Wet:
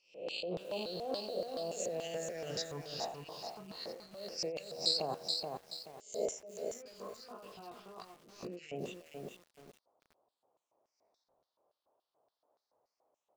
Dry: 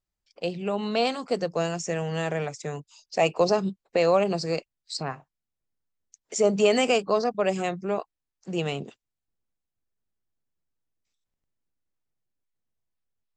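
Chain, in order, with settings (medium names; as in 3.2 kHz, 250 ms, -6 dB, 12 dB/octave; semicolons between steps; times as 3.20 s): reverse spectral sustain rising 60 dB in 0.57 s; bass shelf 280 Hz +4.5 dB; de-hum 79.83 Hz, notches 23; compressor with a negative ratio -34 dBFS, ratio -1; phase shifter stages 6, 0.23 Hz, lowest notch 530–2100 Hz; band noise 250–1100 Hz -76 dBFS; LFO band-pass square 3.5 Hz 610–4700 Hz; 6.41–8.69 s: chorus 1 Hz, delay 16 ms, depth 5.6 ms; speakerphone echo 90 ms, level -21 dB; bit-crushed delay 428 ms, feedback 35%, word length 10-bit, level -4 dB; trim +3 dB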